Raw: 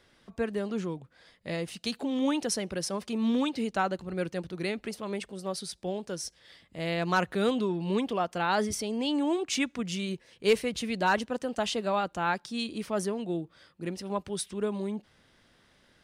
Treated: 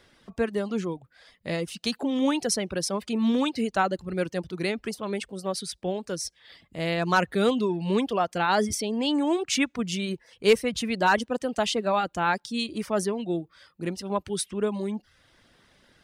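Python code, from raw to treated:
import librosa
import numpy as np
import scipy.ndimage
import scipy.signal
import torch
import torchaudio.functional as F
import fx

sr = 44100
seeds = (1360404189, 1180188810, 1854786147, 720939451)

y = fx.dereverb_blind(x, sr, rt60_s=0.56)
y = y * librosa.db_to_amplitude(4.5)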